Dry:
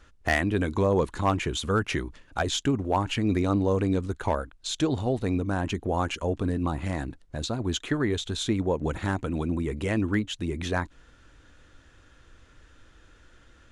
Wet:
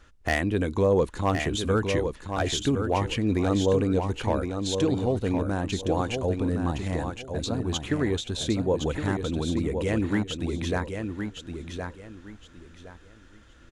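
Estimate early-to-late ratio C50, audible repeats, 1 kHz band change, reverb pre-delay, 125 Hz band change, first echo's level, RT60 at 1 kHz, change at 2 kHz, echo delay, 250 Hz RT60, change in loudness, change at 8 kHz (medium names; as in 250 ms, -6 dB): no reverb, 3, -1.0 dB, no reverb, +1.0 dB, -6.5 dB, no reverb, -1.0 dB, 1065 ms, no reverb, +0.5 dB, +1.0 dB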